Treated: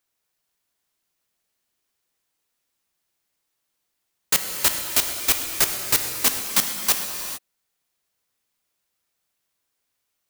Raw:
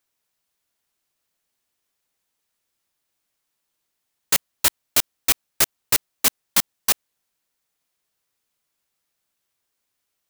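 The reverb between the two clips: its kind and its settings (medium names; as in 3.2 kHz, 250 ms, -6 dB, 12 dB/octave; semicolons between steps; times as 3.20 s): gated-style reverb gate 470 ms flat, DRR 4 dB; trim -1 dB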